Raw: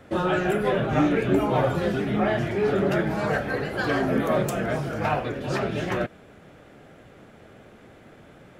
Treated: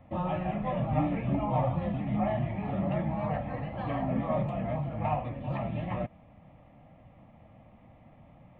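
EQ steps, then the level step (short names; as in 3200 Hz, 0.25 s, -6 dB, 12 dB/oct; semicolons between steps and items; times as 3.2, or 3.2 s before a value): tape spacing loss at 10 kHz 45 dB; fixed phaser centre 1500 Hz, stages 6; 0.0 dB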